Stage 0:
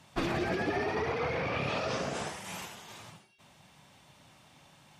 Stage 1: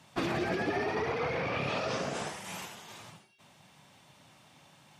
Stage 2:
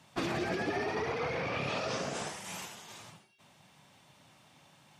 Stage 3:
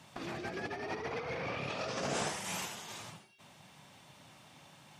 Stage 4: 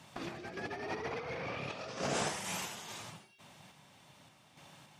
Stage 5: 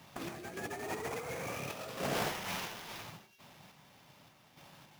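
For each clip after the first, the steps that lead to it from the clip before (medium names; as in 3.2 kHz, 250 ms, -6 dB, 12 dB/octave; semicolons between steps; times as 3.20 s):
high-pass 90 Hz
dynamic bell 6.9 kHz, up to +4 dB, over -56 dBFS, Q 0.82; trim -2 dB
compressor with a negative ratio -37 dBFS, ratio -0.5
random-step tremolo 3.5 Hz; trim +1 dB
sample-rate reducer 8.5 kHz, jitter 20%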